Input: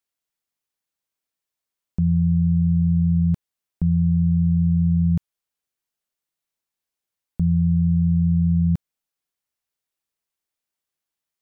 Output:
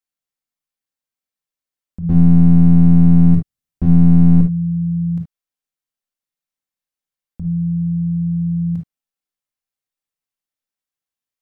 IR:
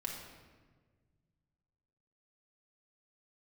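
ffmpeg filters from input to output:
-filter_complex "[0:a]asettb=1/sr,asplit=3[link_01][link_02][link_03];[link_01]atrim=end=2.094[link_04];[link_02]atrim=start=2.09:end=4.41,asetpts=PTS-STARTPTS,afade=type=in:duration=0.004:curve=qsin,afade=type=out:start_time=2.316:duration=0.004:curve=qsin,bass=frequency=250:gain=14,treble=frequency=4000:gain=3[link_05];[link_03]atrim=start=4.406[link_06];[link_04][link_05]acrossfade=duration=0.004:curve1=hsin:curve2=qsin[link_07];[link_07][link_06]acrossfade=duration=0.004:curve1=qsin:curve2=hsin,aeval=exprs='clip(val(0),-1,0.355)':channel_layout=same[link_08];[1:a]atrim=start_sample=2205,atrim=end_sample=3528[link_09];[link_08][link_09]afir=irnorm=-1:irlink=0,volume=-3dB"

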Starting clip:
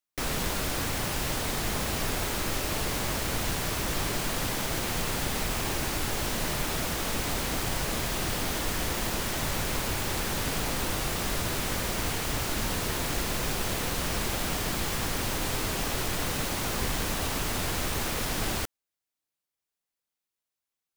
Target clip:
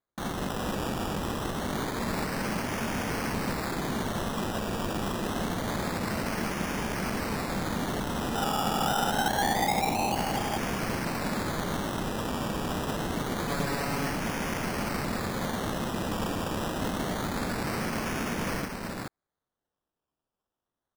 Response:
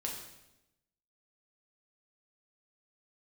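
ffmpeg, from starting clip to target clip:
-filter_complex "[0:a]aeval=exprs='val(0)*sin(2*PI*210*n/s)':channel_layout=same,asettb=1/sr,asplit=3[link_01][link_02][link_03];[link_01]atrim=end=8.354[link_04];[link_02]atrim=start=8.35:end=10.16,asetpts=PTS-STARTPTS,afade=type=in:duration=0.004:curve=qsin,afade=type=out:start_time=1.806:duration=0.004:curve=qsin,lowpass=frequency=810:width_type=q:width=10[link_05];[link_03]atrim=start=10.156[link_06];[link_04][link_05]acrossfade=duration=0.004:curve1=hsin:curve2=qsin[link_07];[link_07][link_06]acrossfade=duration=0.004:curve1=qsin:curve2=hsin,aecho=1:1:425:0.668,acrusher=samples=16:mix=1:aa=0.000001:lfo=1:lforange=9.6:lforate=0.26,asettb=1/sr,asplit=3[link_08][link_09][link_10];[link_08]atrim=end=13.474[link_11];[link_09]atrim=start=13.47:end=14.11,asetpts=PTS-STARTPTS,afade=type=in:duration=0.004:curve=qsin,afade=type=out:start_time=0.636:duration=0.004:curve=qsin,aecho=1:1:7.1:0.74,atrim=end_sample=28224[link_12];[link_10]atrim=start=14.106[link_13];[link_11][link_12]acrossfade=duration=0.004:curve1=hsin:curve2=qsin[link_14];[link_14][link_13]acrossfade=duration=0.004:curve1=qsin:curve2=hsin"

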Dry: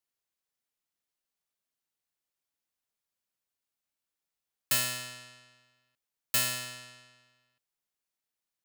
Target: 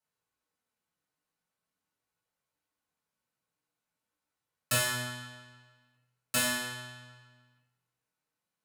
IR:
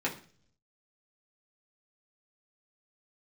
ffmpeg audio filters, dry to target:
-filter_complex "[0:a]flanger=delay=1.3:depth=5.6:regen=-53:speed=0.43:shape=triangular[link_01];[1:a]atrim=start_sample=2205,asetrate=25578,aresample=44100[link_02];[link_01][link_02]afir=irnorm=-1:irlink=0"

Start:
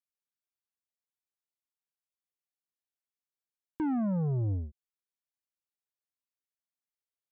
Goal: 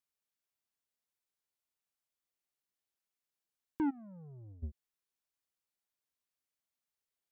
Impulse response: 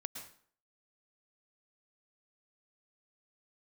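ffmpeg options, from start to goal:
-filter_complex "[0:a]asplit=3[link_01][link_02][link_03];[link_01]afade=type=out:start_time=3.89:duration=0.02[link_04];[link_02]agate=range=-25dB:threshold=-27dB:ratio=16:detection=peak,afade=type=in:start_time=3.89:duration=0.02,afade=type=out:start_time=4.62:duration=0.02[link_05];[link_03]afade=type=in:start_time=4.62:duration=0.02[link_06];[link_04][link_05][link_06]amix=inputs=3:normalize=0,asplit=2[link_07][link_08];[link_08]alimiter=level_in=11.5dB:limit=-24dB:level=0:latency=1:release=97,volume=-11.5dB,volume=0dB[link_09];[link_07][link_09]amix=inputs=2:normalize=0,volume=-4dB"

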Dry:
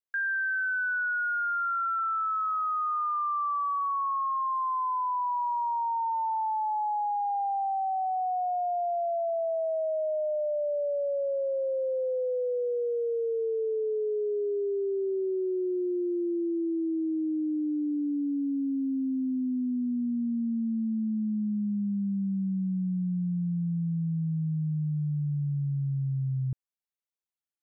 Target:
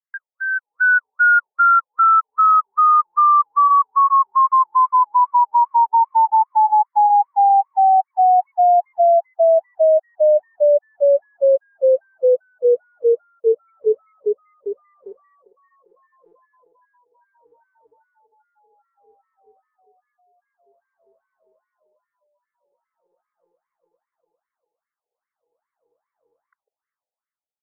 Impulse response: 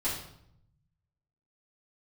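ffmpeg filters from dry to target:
-filter_complex "[0:a]dynaudnorm=framelen=150:gausssize=9:maxgain=15dB,asplit=2[link_01][link_02];[link_02]adelay=150,highpass=300,lowpass=3400,asoftclip=type=hard:threshold=-21dB,volume=-28dB[link_03];[link_01][link_03]amix=inputs=2:normalize=0,afftfilt=real='re*between(b*sr/1024,580*pow(1600/580,0.5+0.5*sin(2*PI*2.5*pts/sr))/1.41,580*pow(1600/580,0.5+0.5*sin(2*PI*2.5*pts/sr))*1.41)':imag='im*between(b*sr/1024,580*pow(1600/580,0.5+0.5*sin(2*PI*2.5*pts/sr))/1.41,580*pow(1600/580,0.5+0.5*sin(2*PI*2.5*pts/sr))*1.41)':win_size=1024:overlap=0.75,volume=2dB"

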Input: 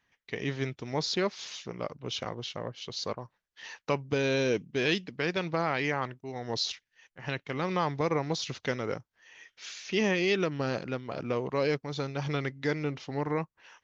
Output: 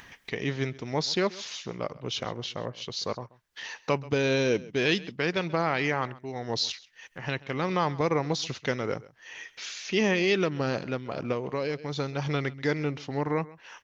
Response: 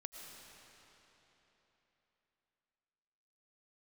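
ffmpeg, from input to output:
-filter_complex "[0:a]acompressor=mode=upward:threshold=-36dB:ratio=2.5,aecho=1:1:133:0.0944,asettb=1/sr,asplit=3[link_01][link_02][link_03];[link_01]atrim=end=11.324[link_04];[link_02]atrim=start=11.32:end=11.79,asetpts=PTS-STARTPTS,afade=type=in:duration=0.004:curve=qsin,afade=type=out:start_time=0.466:duration=0.004:curve=qsin,acompressor=threshold=-30dB:ratio=3[link_05];[link_03]atrim=start=11.786[link_06];[link_04][link_05]acrossfade=duration=0.004:curve1=hsin:curve2=qsin[link_07];[link_07][link_06]acrossfade=duration=0.004:curve1=qsin:curve2=hsin,volume=2.5dB"

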